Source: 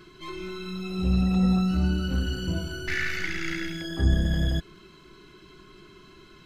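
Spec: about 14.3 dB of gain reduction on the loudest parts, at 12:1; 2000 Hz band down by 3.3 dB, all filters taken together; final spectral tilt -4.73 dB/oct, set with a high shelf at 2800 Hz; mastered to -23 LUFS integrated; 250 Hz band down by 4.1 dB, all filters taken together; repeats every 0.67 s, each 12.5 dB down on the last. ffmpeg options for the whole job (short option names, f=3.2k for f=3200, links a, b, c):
-af "equalizer=f=250:t=o:g=-7,equalizer=f=2k:t=o:g=-5.5,highshelf=f=2.8k:g=4,acompressor=threshold=-31dB:ratio=12,aecho=1:1:670|1340|2010:0.237|0.0569|0.0137,volume=14dB"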